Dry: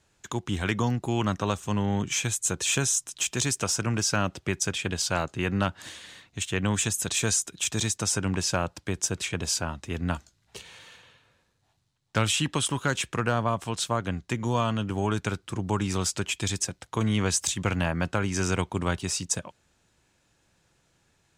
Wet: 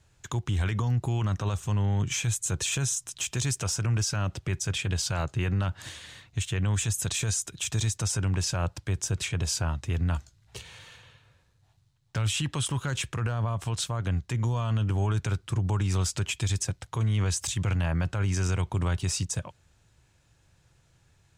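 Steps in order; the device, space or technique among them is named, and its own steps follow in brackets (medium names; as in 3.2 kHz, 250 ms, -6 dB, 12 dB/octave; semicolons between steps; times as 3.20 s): car stereo with a boomy subwoofer (resonant low shelf 160 Hz +8 dB, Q 1.5; peak limiter -19.5 dBFS, peak gain reduction 11 dB)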